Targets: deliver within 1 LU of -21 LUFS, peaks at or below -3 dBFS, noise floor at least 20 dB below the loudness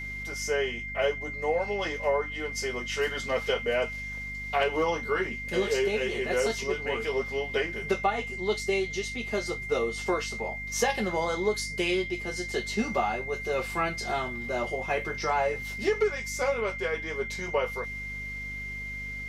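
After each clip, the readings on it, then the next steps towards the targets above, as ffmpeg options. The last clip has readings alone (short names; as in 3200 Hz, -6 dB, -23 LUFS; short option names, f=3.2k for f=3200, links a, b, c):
hum 50 Hz; harmonics up to 250 Hz; hum level -40 dBFS; steady tone 2100 Hz; tone level -35 dBFS; loudness -29.5 LUFS; peak -12.5 dBFS; loudness target -21.0 LUFS
-> -af "bandreject=f=50:t=h:w=6,bandreject=f=100:t=h:w=6,bandreject=f=150:t=h:w=6,bandreject=f=200:t=h:w=6,bandreject=f=250:t=h:w=6"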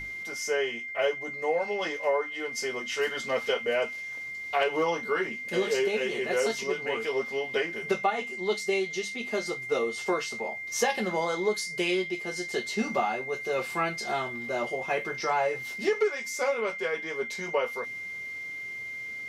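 hum none; steady tone 2100 Hz; tone level -35 dBFS
-> -af "bandreject=f=2.1k:w=30"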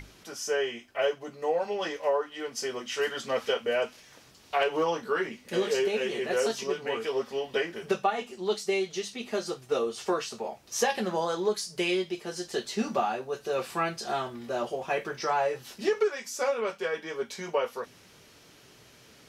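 steady tone none; loudness -30.5 LUFS; peak -13.0 dBFS; loudness target -21.0 LUFS
-> -af "volume=9.5dB"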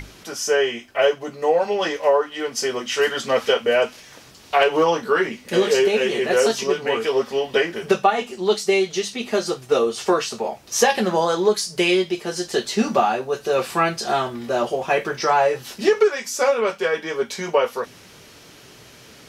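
loudness -21.0 LUFS; peak -3.5 dBFS; noise floor -46 dBFS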